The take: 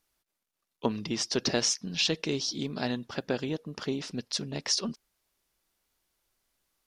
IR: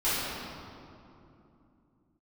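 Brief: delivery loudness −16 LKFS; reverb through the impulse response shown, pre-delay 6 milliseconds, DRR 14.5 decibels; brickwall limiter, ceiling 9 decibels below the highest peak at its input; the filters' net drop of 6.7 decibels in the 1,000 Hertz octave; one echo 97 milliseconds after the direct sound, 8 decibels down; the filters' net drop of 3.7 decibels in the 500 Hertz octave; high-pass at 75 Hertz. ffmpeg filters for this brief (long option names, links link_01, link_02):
-filter_complex "[0:a]highpass=75,equalizer=frequency=500:width_type=o:gain=-3,equalizer=frequency=1000:width_type=o:gain=-8,alimiter=limit=-23dB:level=0:latency=1,aecho=1:1:97:0.398,asplit=2[link_01][link_02];[1:a]atrim=start_sample=2205,adelay=6[link_03];[link_02][link_03]afir=irnorm=-1:irlink=0,volume=-27dB[link_04];[link_01][link_04]amix=inputs=2:normalize=0,volume=18dB"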